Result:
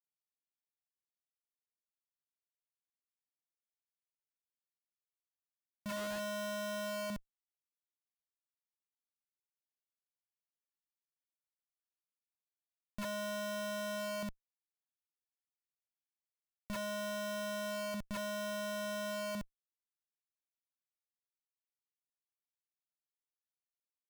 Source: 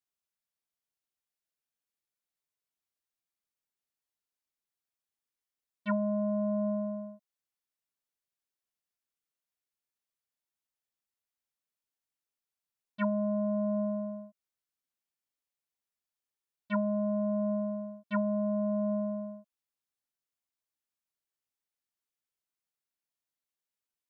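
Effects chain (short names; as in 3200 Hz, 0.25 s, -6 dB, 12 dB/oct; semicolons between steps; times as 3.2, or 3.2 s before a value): limiter -28.5 dBFS, peak gain reduction 8 dB; overdrive pedal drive 19 dB, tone 1500 Hz, clips at -28.5 dBFS; painted sound rise, 5.9–6.2, 930–1900 Hz -50 dBFS; Schmitt trigger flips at -41.5 dBFS; gain +1.5 dB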